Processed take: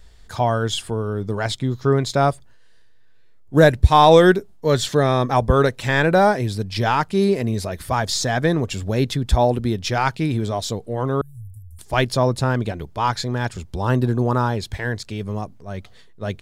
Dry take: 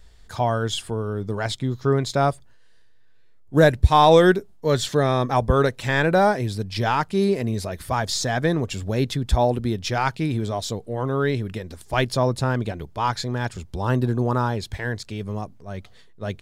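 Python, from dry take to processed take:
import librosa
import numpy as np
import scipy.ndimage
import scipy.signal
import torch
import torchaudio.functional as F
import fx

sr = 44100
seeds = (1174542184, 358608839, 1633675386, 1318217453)

y = fx.cheby2_bandstop(x, sr, low_hz=220.0, high_hz=4500.0, order=4, stop_db=50, at=(11.21, 11.79))
y = F.gain(torch.from_numpy(y), 2.5).numpy()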